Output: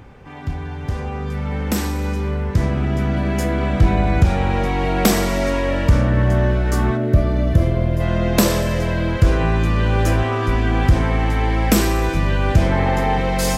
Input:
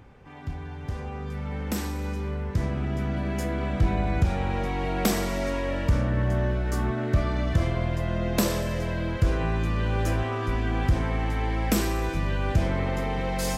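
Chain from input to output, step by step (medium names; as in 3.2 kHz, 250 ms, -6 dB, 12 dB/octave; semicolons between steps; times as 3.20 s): 6.97–8.01 s: time-frequency box 680–9700 Hz -8 dB; 12.72–13.18 s: small resonant body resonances 830/1700 Hz, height 12 dB; trim +8.5 dB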